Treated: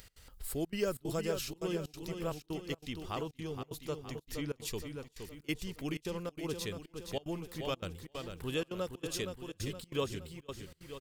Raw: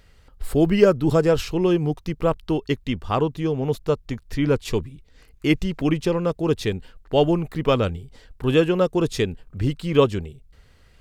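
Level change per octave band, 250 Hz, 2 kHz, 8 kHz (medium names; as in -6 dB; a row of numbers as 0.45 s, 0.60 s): -17.5 dB, -13.0 dB, -3.5 dB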